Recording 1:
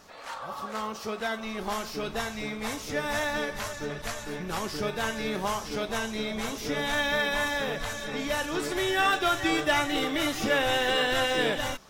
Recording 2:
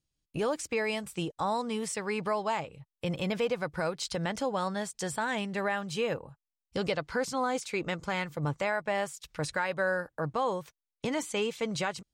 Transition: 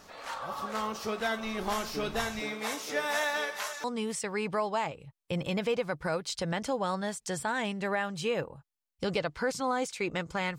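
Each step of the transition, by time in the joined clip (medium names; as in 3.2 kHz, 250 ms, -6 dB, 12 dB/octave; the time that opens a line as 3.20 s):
recording 1
2.39–3.84 s: high-pass 230 Hz -> 790 Hz
3.84 s: go over to recording 2 from 1.57 s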